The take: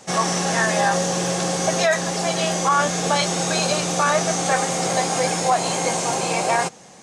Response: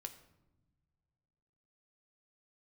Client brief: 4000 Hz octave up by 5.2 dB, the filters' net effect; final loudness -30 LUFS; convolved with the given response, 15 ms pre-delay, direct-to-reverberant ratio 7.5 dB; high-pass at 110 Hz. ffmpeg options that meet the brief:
-filter_complex "[0:a]highpass=110,equalizer=f=4k:t=o:g=6.5,asplit=2[a][b];[1:a]atrim=start_sample=2205,adelay=15[c];[b][c]afir=irnorm=-1:irlink=0,volume=-3.5dB[d];[a][d]amix=inputs=2:normalize=0,volume=-12dB"

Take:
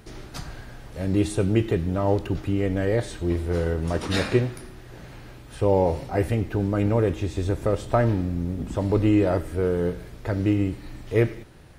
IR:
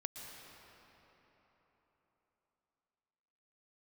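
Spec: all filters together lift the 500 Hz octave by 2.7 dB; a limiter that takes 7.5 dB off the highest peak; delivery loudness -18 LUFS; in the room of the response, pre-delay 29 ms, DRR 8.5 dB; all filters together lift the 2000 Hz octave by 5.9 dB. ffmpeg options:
-filter_complex "[0:a]equalizer=f=500:t=o:g=3,equalizer=f=2k:t=o:g=7,alimiter=limit=-12.5dB:level=0:latency=1,asplit=2[a][b];[1:a]atrim=start_sample=2205,adelay=29[c];[b][c]afir=irnorm=-1:irlink=0,volume=-7dB[d];[a][d]amix=inputs=2:normalize=0,volume=6dB"

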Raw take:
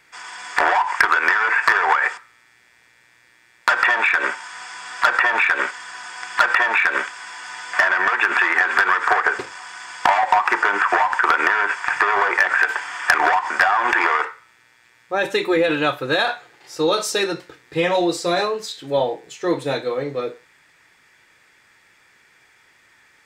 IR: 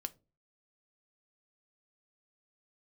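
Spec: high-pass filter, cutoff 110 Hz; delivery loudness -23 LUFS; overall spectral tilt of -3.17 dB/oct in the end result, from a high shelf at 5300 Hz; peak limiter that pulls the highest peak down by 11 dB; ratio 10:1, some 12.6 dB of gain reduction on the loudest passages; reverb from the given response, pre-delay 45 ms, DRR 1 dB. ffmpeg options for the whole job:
-filter_complex "[0:a]highpass=110,highshelf=f=5.3k:g=-7,acompressor=threshold=-25dB:ratio=10,alimiter=limit=-18.5dB:level=0:latency=1,asplit=2[a][b];[1:a]atrim=start_sample=2205,adelay=45[c];[b][c]afir=irnorm=-1:irlink=0,volume=1dB[d];[a][d]amix=inputs=2:normalize=0,volume=5dB"

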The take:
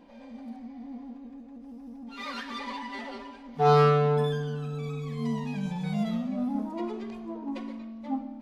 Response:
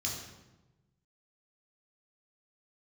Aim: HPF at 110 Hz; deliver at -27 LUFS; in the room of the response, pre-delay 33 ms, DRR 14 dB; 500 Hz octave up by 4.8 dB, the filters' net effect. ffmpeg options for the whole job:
-filter_complex "[0:a]highpass=110,equalizer=f=500:t=o:g=5.5,asplit=2[a][b];[1:a]atrim=start_sample=2205,adelay=33[c];[b][c]afir=irnorm=-1:irlink=0,volume=-16.5dB[d];[a][d]amix=inputs=2:normalize=0"

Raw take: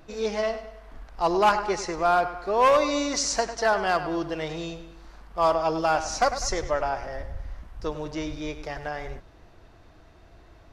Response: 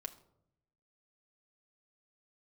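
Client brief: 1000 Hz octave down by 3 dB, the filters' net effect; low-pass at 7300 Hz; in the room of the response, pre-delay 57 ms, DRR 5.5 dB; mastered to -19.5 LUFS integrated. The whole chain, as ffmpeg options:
-filter_complex "[0:a]lowpass=7.3k,equalizer=f=1k:t=o:g=-4,asplit=2[a][b];[1:a]atrim=start_sample=2205,adelay=57[c];[b][c]afir=irnorm=-1:irlink=0,volume=-2dB[d];[a][d]amix=inputs=2:normalize=0,volume=7dB"

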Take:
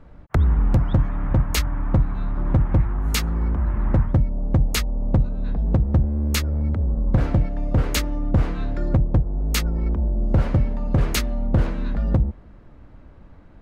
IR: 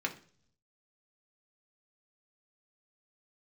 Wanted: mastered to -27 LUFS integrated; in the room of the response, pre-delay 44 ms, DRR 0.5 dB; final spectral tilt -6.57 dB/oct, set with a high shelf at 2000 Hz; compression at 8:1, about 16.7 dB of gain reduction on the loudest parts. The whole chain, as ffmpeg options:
-filter_complex "[0:a]highshelf=f=2k:g=-5,acompressor=threshold=-31dB:ratio=8,asplit=2[a][b];[1:a]atrim=start_sample=2205,adelay=44[c];[b][c]afir=irnorm=-1:irlink=0,volume=-5.5dB[d];[a][d]amix=inputs=2:normalize=0,volume=8.5dB"

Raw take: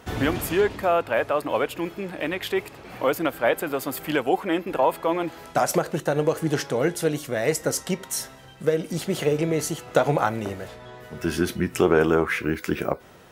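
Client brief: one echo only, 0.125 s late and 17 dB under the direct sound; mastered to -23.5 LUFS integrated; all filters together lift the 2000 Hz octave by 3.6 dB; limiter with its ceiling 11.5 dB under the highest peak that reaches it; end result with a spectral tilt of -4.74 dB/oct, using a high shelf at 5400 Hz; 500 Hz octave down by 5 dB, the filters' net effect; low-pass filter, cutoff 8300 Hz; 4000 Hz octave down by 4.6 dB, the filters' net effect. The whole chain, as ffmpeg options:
-af "lowpass=8.3k,equalizer=f=500:t=o:g=-6.5,equalizer=f=2k:t=o:g=7.5,equalizer=f=4k:t=o:g=-6.5,highshelf=f=5.4k:g=-8,alimiter=limit=-17.5dB:level=0:latency=1,aecho=1:1:125:0.141,volume=7dB"

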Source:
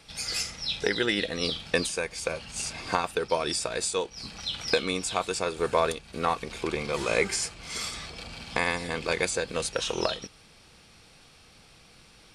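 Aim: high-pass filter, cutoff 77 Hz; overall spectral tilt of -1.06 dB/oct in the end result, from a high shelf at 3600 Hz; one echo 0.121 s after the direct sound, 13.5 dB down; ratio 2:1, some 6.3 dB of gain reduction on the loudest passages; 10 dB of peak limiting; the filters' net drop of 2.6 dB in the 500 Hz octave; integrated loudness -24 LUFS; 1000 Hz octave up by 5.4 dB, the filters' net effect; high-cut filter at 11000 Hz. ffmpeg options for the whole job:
-af "highpass=77,lowpass=11k,equalizer=f=500:t=o:g=-5,equalizer=f=1k:t=o:g=7,highshelf=f=3.6k:g=8,acompressor=threshold=-28dB:ratio=2,alimiter=limit=-18dB:level=0:latency=1,aecho=1:1:121:0.211,volume=6.5dB"

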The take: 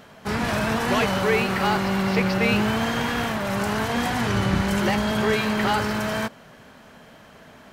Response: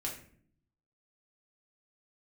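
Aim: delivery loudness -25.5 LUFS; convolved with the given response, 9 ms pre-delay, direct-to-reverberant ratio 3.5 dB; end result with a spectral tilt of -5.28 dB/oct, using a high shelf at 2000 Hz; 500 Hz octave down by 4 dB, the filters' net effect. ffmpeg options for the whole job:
-filter_complex "[0:a]equalizer=f=500:t=o:g=-4.5,highshelf=f=2k:g=-8,asplit=2[a][b];[1:a]atrim=start_sample=2205,adelay=9[c];[b][c]afir=irnorm=-1:irlink=0,volume=-4.5dB[d];[a][d]amix=inputs=2:normalize=0,volume=-2.5dB"

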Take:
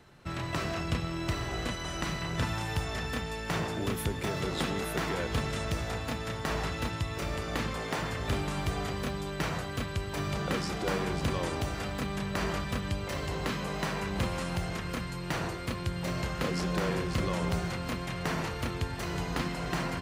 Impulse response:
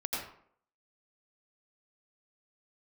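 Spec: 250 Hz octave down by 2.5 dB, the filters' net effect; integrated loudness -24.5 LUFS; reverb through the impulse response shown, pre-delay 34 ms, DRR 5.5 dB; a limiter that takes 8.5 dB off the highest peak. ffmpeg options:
-filter_complex "[0:a]equalizer=f=250:t=o:g=-4,alimiter=level_in=1dB:limit=-24dB:level=0:latency=1,volume=-1dB,asplit=2[a][b];[1:a]atrim=start_sample=2205,adelay=34[c];[b][c]afir=irnorm=-1:irlink=0,volume=-10dB[d];[a][d]amix=inputs=2:normalize=0,volume=9.5dB"

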